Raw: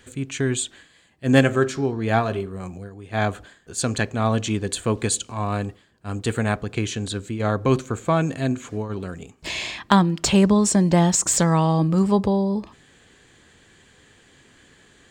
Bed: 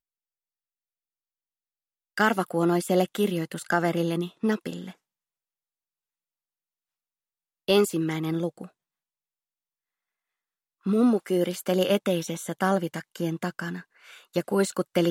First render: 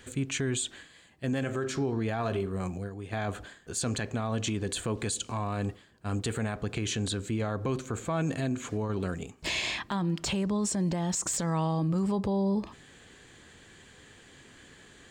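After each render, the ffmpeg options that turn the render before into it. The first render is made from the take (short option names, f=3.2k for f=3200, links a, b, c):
-af "acompressor=threshold=-23dB:ratio=4,alimiter=limit=-22dB:level=0:latency=1:release=25"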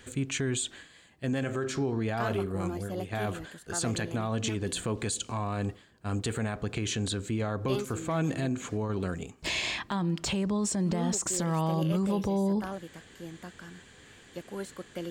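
-filter_complex "[1:a]volume=-14.5dB[a];[0:a][a]amix=inputs=2:normalize=0"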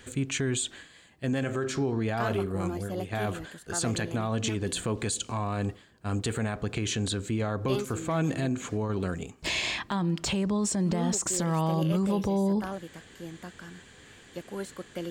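-af "volume=1.5dB"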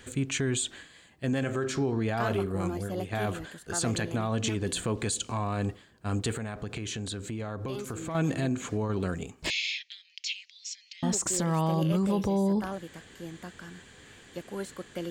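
-filter_complex "[0:a]asettb=1/sr,asplit=3[a][b][c];[a]atrim=end=6.374[d];[b]atrim=start=6.37:end=8.15,asetpts=PTS-STARTPTS,afade=t=in:d=0.004:c=qsin,afade=t=out:st=1.776:d=0.004:c=qsin,acompressor=threshold=-33dB:ratio=3:attack=3.2:release=140:knee=1:detection=peak[e];[c]atrim=start=8.146[f];[d][e]acrossfade=d=0.004:c1=hsin:c2=qsin[g];[g][f]acrossfade=d=0.004:c1=qsin:c2=hsin,asettb=1/sr,asplit=3[h][i][j];[h]atrim=end=9.504[k];[i]atrim=start=9.5:end=11.03,asetpts=PTS-STARTPTS,afade=t=in:d=0.004:c=qsin,afade=t=out:st=1.526:d=0.004:c=qsin,asuperpass=centerf=3800:order=12:qfactor=0.86[l];[j]atrim=start=11.026[m];[k][l]acrossfade=d=0.004:c1=hsin:c2=qsin[n];[n][m]acrossfade=d=0.004:c1=qsin:c2=hsin"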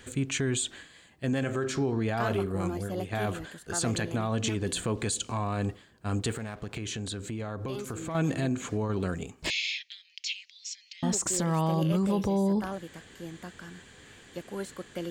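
-filter_complex "[0:a]asettb=1/sr,asplit=3[a][b][c];[a]atrim=end=6.304[d];[b]atrim=start=6.3:end=6.76,asetpts=PTS-STARTPTS,afade=t=in:d=0.004:c=qsin,afade=t=out:st=0.456:d=0.004:c=qsin,aeval=exprs='sgn(val(0))*max(abs(val(0))-0.00355,0)':c=same[e];[c]atrim=start=6.756[f];[d][e]acrossfade=d=0.004:c1=hsin:c2=qsin[g];[g][f]acrossfade=d=0.004:c1=qsin:c2=hsin"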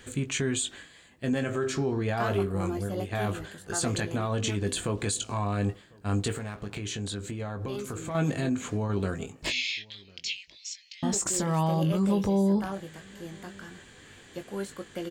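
-filter_complex "[0:a]asplit=2[a][b];[b]adelay=20,volume=-8dB[c];[a][c]amix=inputs=2:normalize=0,asplit=2[d][e];[e]adelay=1050,volume=-26dB,highshelf=f=4k:g=-23.6[f];[d][f]amix=inputs=2:normalize=0"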